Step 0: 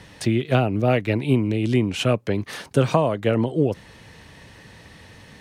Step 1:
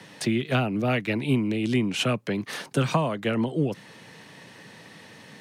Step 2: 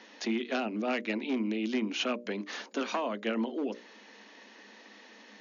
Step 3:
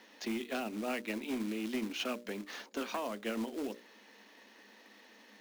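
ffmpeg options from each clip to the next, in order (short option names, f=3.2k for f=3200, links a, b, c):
-filter_complex "[0:a]highpass=f=140:w=0.5412,highpass=f=140:w=1.3066,acrossover=split=270|890[a][b][c];[b]acompressor=threshold=-31dB:ratio=6[d];[a][d][c]amix=inputs=3:normalize=0"
-af "volume=17.5dB,asoftclip=hard,volume=-17.5dB,bandreject=f=60:t=h:w=6,bandreject=f=120:t=h:w=6,bandreject=f=180:t=h:w=6,bandreject=f=240:t=h:w=6,bandreject=f=300:t=h:w=6,bandreject=f=360:t=h:w=6,bandreject=f=420:t=h:w=6,bandreject=f=480:t=h:w=6,bandreject=f=540:t=h:w=6,bandreject=f=600:t=h:w=6,afftfilt=real='re*between(b*sr/4096,200,6900)':imag='im*between(b*sr/4096,200,6900)':win_size=4096:overlap=0.75,volume=-5dB"
-af "acrusher=bits=3:mode=log:mix=0:aa=0.000001,volume=-5.5dB"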